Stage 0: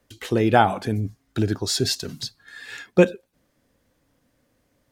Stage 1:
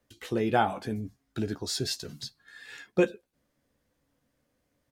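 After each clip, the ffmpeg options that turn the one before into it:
-filter_complex "[0:a]asplit=2[a][b];[b]adelay=14,volume=-8dB[c];[a][c]amix=inputs=2:normalize=0,volume=-8.5dB"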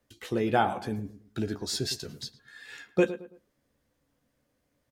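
-filter_complex "[0:a]asplit=2[a][b];[b]adelay=110,lowpass=f=1.7k:p=1,volume=-13dB,asplit=2[c][d];[d]adelay=110,lowpass=f=1.7k:p=1,volume=0.34,asplit=2[e][f];[f]adelay=110,lowpass=f=1.7k:p=1,volume=0.34[g];[a][c][e][g]amix=inputs=4:normalize=0"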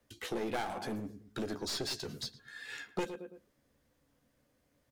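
-filter_complex "[0:a]aeval=exprs='clip(val(0),-1,0.0188)':c=same,acrossover=split=190|4700[a][b][c];[a]acompressor=threshold=-49dB:ratio=4[d];[b]acompressor=threshold=-35dB:ratio=4[e];[c]acompressor=threshold=-45dB:ratio=4[f];[d][e][f]amix=inputs=3:normalize=0,volume=1dB"

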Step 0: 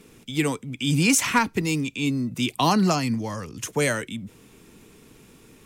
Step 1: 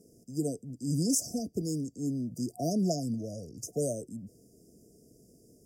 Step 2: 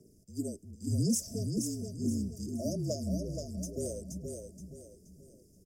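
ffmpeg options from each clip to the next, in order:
-af "afftfilt=real='re*(1-between(b*sr/4096,730,4700))':imag='im*(1-between(b*sr/4096,730,4700))':win_size=4096:overlap=0.75,highpass=42,equalizer=f=1.5k:w=1.2:g=14,volume=-8dB"
-filter_complex "[0:a]afreqshift=-42,aphaser=in_gain=1:out_gain=1:delay=3.5:decay=0.44:speed=0.94:type=sinusoidal,asplit=2[a][b];[b]aecho=0:1:475|950|1425|1900:0.531|0.186|0.065|0.0228[c];[a][c]amix=inputs=2:normalize=0,volume=-5dB"

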